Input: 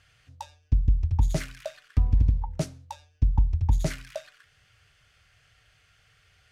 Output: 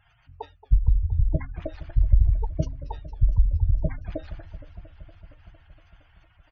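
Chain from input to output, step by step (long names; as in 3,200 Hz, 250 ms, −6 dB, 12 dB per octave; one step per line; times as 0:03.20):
gate on every frequency bin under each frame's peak −15 dB strong
pitch-shifted copies added −12 semitones −2 dB, −4 semitones −11 dB, −3 semitones −17 dB
feedback echo with a swinging delay time 231 ms, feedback 76%, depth 187 cents, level −16.5 dB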